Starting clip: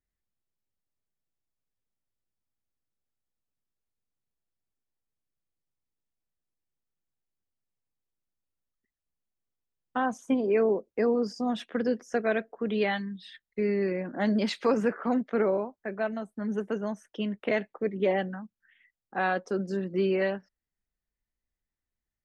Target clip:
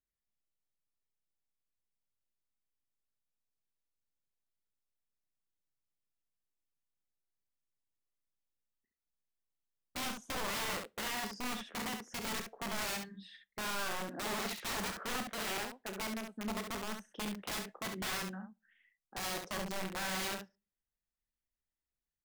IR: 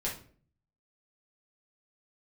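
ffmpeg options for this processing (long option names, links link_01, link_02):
-filter_complex "[0:a]aeval=exprs='(mod(18.8*val(0)+1,2)-1)/18.8':channel_layout=same,aecho=1:1:32|68:0.282|0.501,asplit=2[link_01][link_02];[1:a]atrim=start_sample=2205,asetrate=66150,aresample=44100,lowshelf=frequency=430:gain=-10.5[link_03];[link_02][link_03]afir=irnorm=-1:irlink=0,volume=-18.5dB[link_04];[link_01][link_04]amix=inputs=2:normalize=0,volume=-8.5dB"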